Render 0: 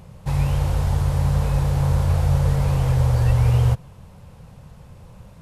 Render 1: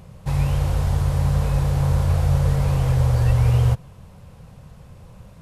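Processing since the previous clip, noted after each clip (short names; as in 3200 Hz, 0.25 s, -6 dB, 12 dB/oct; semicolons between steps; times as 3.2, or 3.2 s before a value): notch 880 Hz, Q 20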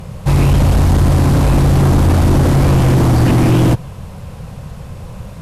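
sine folder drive 10 dB, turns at -7 dBFS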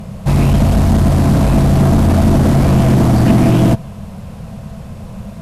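small resonant body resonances 210/660 Hz, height 12 dB, ringing for 90 ms; gain -1.5 dB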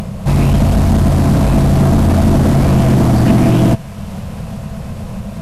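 upward compressor, threshold -17 dBFS; thin delay 0.458 s, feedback 77%, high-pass 1500 Hz, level -18 dB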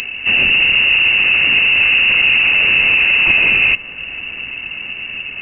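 inverted band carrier 2800 Hz; tilt shelf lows +6 dB, about 700 Hz; gain +2.5 dB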